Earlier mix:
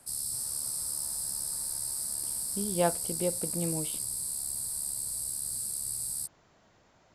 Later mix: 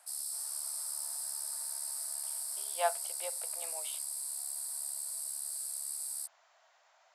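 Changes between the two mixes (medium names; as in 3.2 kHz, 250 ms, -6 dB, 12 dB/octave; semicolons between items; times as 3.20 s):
background -3.5 dB; master: add elliptic high-pass 650 Hz, stop band 80 dB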